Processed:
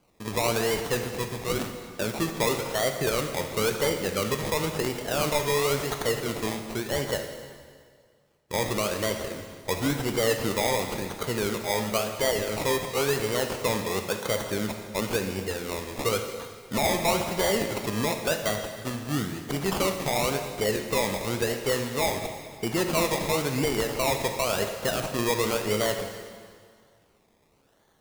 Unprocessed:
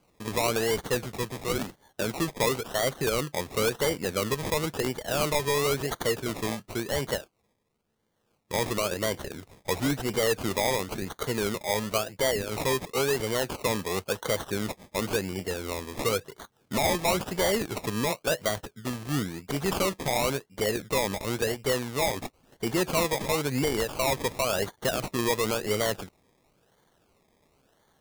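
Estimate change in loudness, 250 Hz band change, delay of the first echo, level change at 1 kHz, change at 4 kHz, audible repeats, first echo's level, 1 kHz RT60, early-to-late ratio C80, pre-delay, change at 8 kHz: +1.0 dB, +1.0 dB, no echo audible, +1.0 dB, +1.0 dB, no echo audible, no echo audible, 1.9 s, 8.0 dB, 7 ms, +1.0 dB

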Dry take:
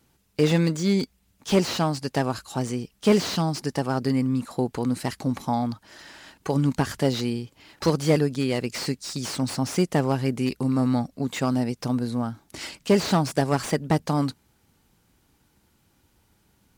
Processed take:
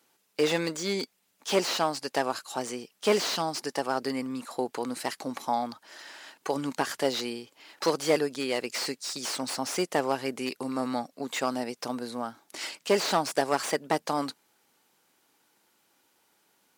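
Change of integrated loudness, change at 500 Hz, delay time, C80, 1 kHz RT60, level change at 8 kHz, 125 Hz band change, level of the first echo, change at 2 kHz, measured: −5.0 dB, −2.5 dB, no echo audible, no reverb audible, no reverb audible, 0.0 dB, −18.0 dB, no echo audible, 0.0 dB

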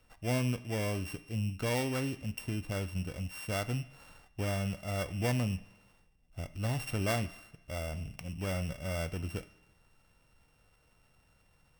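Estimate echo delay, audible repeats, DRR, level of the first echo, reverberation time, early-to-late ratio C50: no echo audible, no echo audible, 9.0 dB, no echo audible, 1.0 s, 15.5 dB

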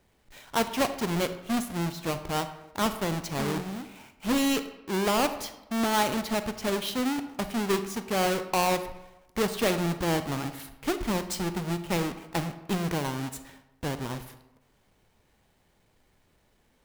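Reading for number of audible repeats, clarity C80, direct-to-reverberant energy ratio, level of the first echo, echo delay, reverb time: no echo audible, 13.0 dB, 10.0 dB, no echo audible, no echo audible, 1.0 s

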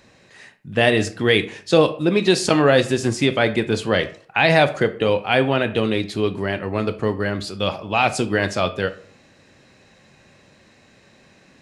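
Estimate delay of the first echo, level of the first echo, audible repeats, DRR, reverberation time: no echo audible, no echo audible, no echo audible, 10.0 dB, 0.50 s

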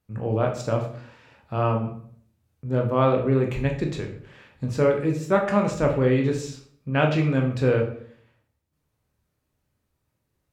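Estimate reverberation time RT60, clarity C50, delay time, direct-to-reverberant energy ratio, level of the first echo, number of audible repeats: 0.60 s, 7.5 dB, no echo audible, 1.5 dB, no echo audible, no echo audible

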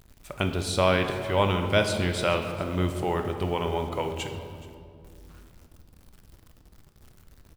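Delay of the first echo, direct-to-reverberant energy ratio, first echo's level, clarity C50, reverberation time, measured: 424 ms, 5.5 dB, −20.0 dB, 7.0 dB, 2.4 s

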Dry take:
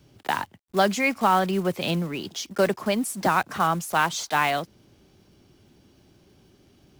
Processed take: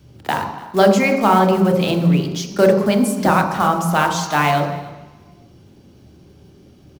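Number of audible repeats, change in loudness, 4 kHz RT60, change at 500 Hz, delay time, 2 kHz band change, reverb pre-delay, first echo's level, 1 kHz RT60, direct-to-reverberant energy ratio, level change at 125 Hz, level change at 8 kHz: 1, +8.0 dB, 1.2 s, +10.0 dB, 292 ms, +4.0 dB, 22 ms, −21.0 dB, 1.2 s, 3.0 dB, +12.0 dB, +4.0 dB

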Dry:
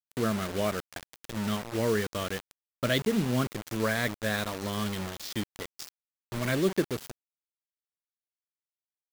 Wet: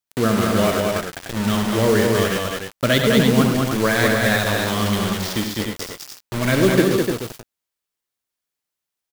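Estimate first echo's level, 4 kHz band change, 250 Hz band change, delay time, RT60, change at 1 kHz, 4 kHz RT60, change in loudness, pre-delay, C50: −8.5 dB, +12.0 dB, +12.0 dB, 70 ms, no reverb audible, +12.0 dB, no reverb audible, +11.5 dB, no reverb audible, no reverb audible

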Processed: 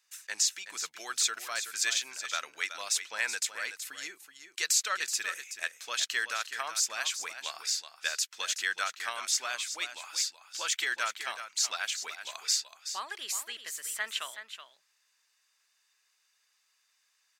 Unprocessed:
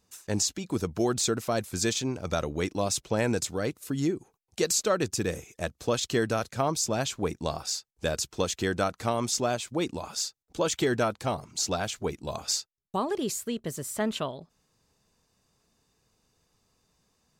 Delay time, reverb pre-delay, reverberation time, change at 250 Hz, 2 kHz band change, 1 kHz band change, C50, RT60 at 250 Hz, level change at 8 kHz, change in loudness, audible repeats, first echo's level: 375 ms, no reverb audible, no reverb audible, −31.0 dB, +4.5 dB, −5.5 dB, no reverb audible, no reverb audible, +1.0 dB, −2.0 dB, 1, −10.0 dB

